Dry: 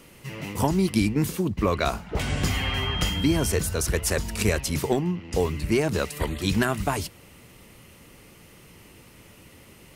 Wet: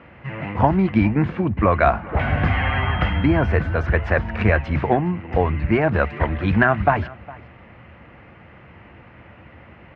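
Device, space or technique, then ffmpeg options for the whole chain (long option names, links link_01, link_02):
bass cabinet: -af "highpass=69,equalizer=frequency=72:width_type=q:width=4:gain=6,equalizer=frequency=170:width_type=q:width=4:gain=-4,equalizer=frequency=270:width_type=q:width=4:gain=-4,equalizer=frequency=410:width_type=q:width=4:gain=-8,equalizer=frequency=720:width_type=q:width=4:gain=5,equalizer=frequency=1600:width_type=q:width=4:gain=4,lowpass=frequency=2200:width=0.5412,lowpass=frequency=2200:width=1.3066,aecho=1:1:409:0.0891,volume=7.5dB"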